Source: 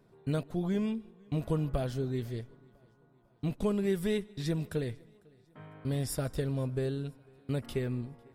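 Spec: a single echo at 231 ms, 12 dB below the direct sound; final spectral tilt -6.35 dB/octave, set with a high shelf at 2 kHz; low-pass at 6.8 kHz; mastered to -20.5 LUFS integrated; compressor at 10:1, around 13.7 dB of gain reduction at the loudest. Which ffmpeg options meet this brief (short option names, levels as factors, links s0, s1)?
-af "lowpass=6800,highshelf=f=2000:g=6.5,acompressor=threshold=0.0112:ratio=10,aecho=1:1:231:0.251,volume=15.8"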